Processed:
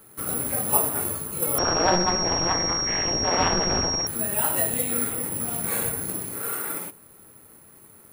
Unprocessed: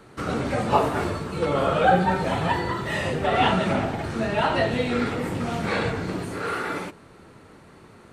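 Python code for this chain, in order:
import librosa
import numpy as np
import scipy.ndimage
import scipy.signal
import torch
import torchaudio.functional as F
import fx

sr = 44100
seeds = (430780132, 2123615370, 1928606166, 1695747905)

y = (np.kron(x[::4], np.eye(4)[0]) * 4)[:len(x)]
y = fx.pwm(y, sr, carrier_hz=5600.0, at=(1.58, 4.07))
y = y * librosa.db_to_amplitude(-7.5)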